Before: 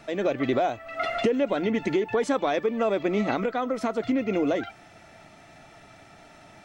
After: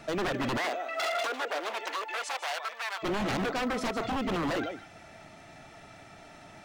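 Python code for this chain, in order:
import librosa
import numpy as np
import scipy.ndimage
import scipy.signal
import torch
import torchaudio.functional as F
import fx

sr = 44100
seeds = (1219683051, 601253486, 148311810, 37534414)

y = fx.rider(x, sr, range_db=10, speed_s=0.5)
y = y + 10.0 ** (-12.5 / 20.0) * np.pad(y, (int(154 * sr / 1000.0), 0))[:len(y)]
y = 10.0 ** (-25.0 / 20.0) * (np.abs((y / 10.0 ** (-25.0 / 20.0) + 3.0) % 4.0 - 2.0) - 1.0)
y = fx.highpass(y, sr, hz=fx.line((0.57, 280.0), (3.02, 930.0)), slope=24, at=(0.57, 3.02), fade=0.02)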